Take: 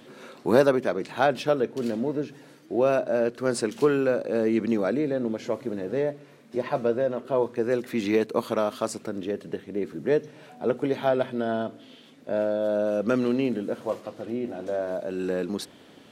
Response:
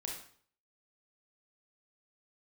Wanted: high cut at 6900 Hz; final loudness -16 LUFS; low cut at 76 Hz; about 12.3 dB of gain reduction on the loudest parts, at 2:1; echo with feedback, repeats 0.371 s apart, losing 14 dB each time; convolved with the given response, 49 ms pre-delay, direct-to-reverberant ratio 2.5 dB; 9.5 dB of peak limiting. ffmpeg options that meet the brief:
-filter_complex "[0:a]highpass=76,lowpass=6.9k,acompressor=threshold=-37dB:ratio=2,alimiter=level_in=4dB:limit=-24dB:level=0:latency=1,volume=-4dB,aecho=1:1:371|742:0.2|0.0399,asplit=2[a][b];[1:a]atrim=start_sample=2205,adelay=49[c];[b][c]afir=irnorm=-1:irlink=0,volume=-2dB[d];[a][d]amix=inputs=2:normalize=0,volume=20.5dB"

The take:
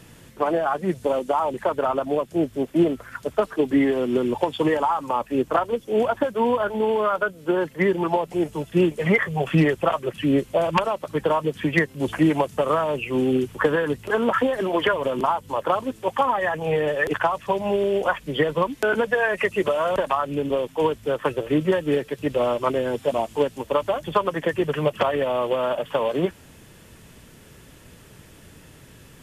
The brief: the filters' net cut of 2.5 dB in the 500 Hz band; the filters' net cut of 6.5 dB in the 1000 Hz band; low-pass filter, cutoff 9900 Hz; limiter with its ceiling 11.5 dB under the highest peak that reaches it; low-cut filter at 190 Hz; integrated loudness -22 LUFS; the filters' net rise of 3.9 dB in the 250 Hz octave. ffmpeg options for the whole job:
-af "highpass=190,lowpass=9.9k,equalizer=f=250:t=o:g=8.5,equalizer=f=500:t=o:g=-4,equalizer=f=1k:t=o:g=-7.5,volume=5dB,alimiter=limit=-12.5dB:level=0:latency=1"

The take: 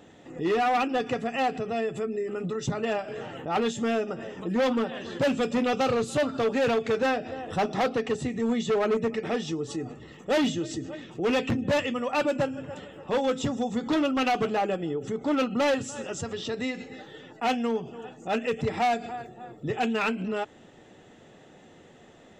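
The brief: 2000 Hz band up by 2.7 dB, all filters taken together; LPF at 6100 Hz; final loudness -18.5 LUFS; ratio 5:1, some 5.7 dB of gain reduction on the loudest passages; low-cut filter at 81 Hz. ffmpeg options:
-af "highpass=81,lowpass=6.1k,equalizer=f=2k:t=o:g=3.5,acompressor=threshold=-27dB:ratio=5,volume=13.5dB"

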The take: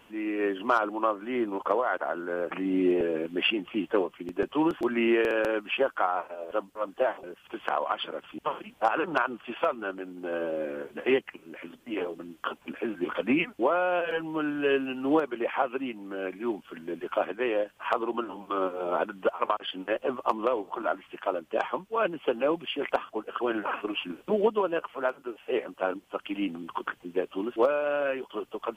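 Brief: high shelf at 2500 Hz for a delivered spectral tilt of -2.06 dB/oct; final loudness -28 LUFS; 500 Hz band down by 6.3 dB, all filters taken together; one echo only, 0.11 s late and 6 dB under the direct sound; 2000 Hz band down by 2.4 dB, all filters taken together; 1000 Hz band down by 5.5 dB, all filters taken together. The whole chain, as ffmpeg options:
-af "equalizer=f=500:t=o:g=-7,equalizer=f=1k:t=o:g=-5,equalizer=f=2k:t=o:g=-5.5,highshelf=f=2.5k:g=8,aecho=1:1:110:0.501,volume=5dB"

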